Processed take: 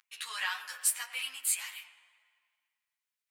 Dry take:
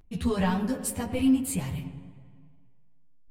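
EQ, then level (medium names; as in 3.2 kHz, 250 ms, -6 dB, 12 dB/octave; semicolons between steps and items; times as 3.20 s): high-pass 1.4 kHz 24 dB/octave; +4.5 dB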